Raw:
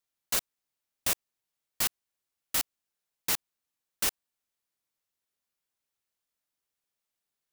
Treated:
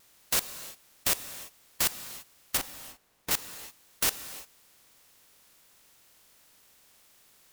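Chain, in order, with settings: per-bin compression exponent 0.6; 2.57–3.31 high shelf 2200 Hz -10.5 dB; non-linear reverb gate 0.37 s flat, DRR 11 dB; vibrato 2.7 Hz 49 cents

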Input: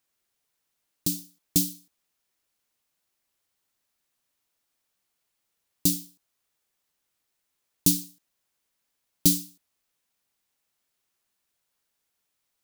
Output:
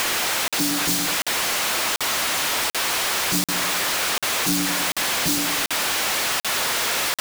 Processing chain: zero-crossing step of -28.5 dBFS; plain phase-vocoder stretch 0.57×; overdrive pedal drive 18 dB, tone 2500 Hz, clips at -9.5 dBFS; on a send: darkening echo 0.104 s, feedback 62%, level -12.5 dB; on the sum: sample leveller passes 5; crackling interface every 0.74 s, samples 2048, zero, from 0.48; gain -4 dB

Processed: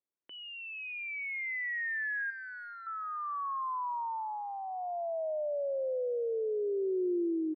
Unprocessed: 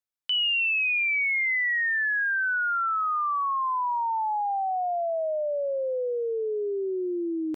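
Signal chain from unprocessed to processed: tilt shelf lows +8.5 dB; limiter -29 dBFS, peak gain reduction 10 dB; 2.3–2.87 hard clip -40 dBFS, distortion -15 dB; speaker cabinet 310–2000 Hz, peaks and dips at 350 Hz +4 dB, 790 Hz -7 dB, 1300 Hz -6 dB; on a send: feedback echo 0.432 s, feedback 39%, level -20 dB

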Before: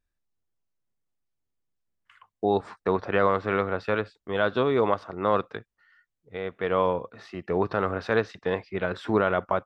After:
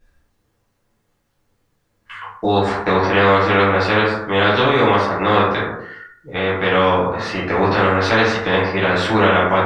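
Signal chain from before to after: high shelf 4700 Hz -6.5 dB; plate-style reverb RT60 0.59 s, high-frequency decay 0.5×, DRR -9.5 dB; spectral compressor 2:1; gain -2 dB

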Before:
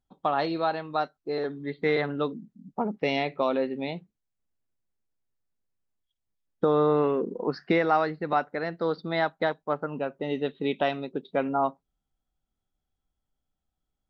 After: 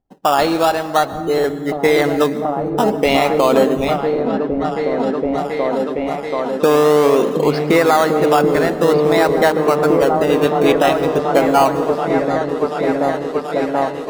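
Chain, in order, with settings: low-pass opened by the level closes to 700 Hz; low shelf 220 Hz -10.5 dB; in parallel at -6 dB: decimation with a swept rate 17×, swing 60% 0.5 Hz; on the sum: repeats that get brighter 0.732 s, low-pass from 200 Hz, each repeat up 1 oct, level 0 dB; on a send at -14.5 dB: reverb RT60 1.9 s, pre-delay 0.108 s; on the sum: maximiser +13.5 dB; gain -1.5 dB

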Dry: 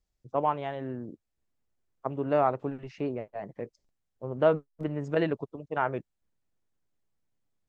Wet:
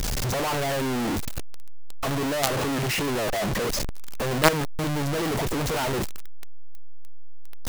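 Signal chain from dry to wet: zero-crossing step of -29 dBFS; companded quantiser 2-bit; gain -1 dB

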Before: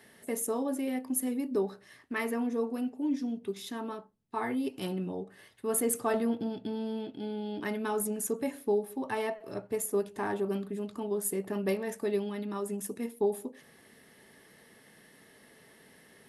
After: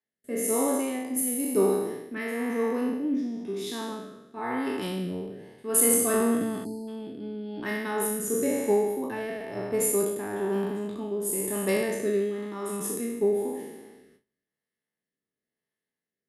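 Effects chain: spectral trails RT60 1.68 s; gate with hold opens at -41 dBFS; spectral delete 6.65–6.88, 1000–4000 Hz; rotary speaker horn 1 Hz; three-band expander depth 40%; gain +3 dB

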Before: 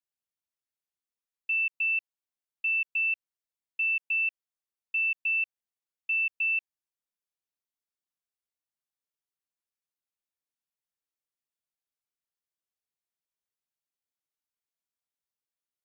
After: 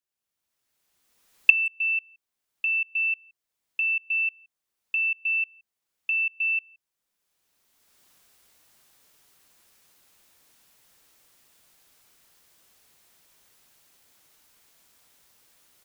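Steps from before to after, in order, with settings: recorder AGC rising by 21 dB/s; speakerphone echo 0.17 s, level -28 dB; gain +2 dB

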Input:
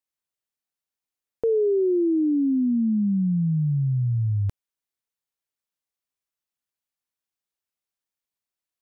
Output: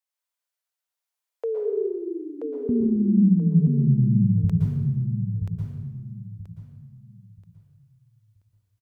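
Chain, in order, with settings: HPF 500 Hz 24 dB/oct, from 2.69 s 89 Hz, from 4.44 s 47 Hz; feedback echo 0.98 s, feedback 28%, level -5 dB; plate-style reverb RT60 1.2 s, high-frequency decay 0.8×, pre-delay 0.105 s, DRR 0 dB

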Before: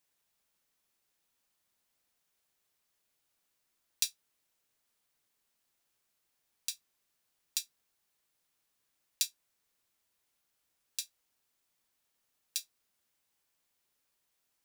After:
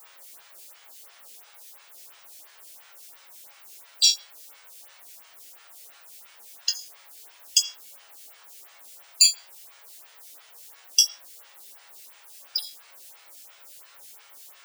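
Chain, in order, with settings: random spectral dropouts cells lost 75%; band shelf 4200 Hz +13.5 dB; in parallel at -11 dB: requantised 8-bit, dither triangular; on the sum: HPF 540 Hz 12 dB/oct; resonator bank F#2 major, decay 0.27 s; maximiser +24.5 dB; photocell phaser 2.9 Hz

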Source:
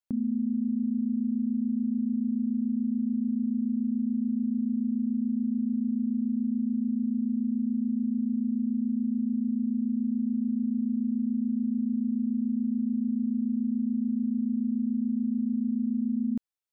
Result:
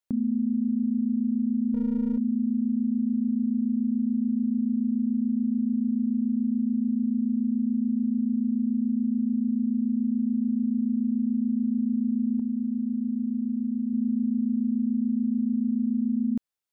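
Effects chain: 1.74–2.18 minimum comb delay 0.33 ms; 12.39–13.93 dynamic EQ 160 Hz, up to -4 dB, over -38 dBFS, Q 1; gain +2.5 dB

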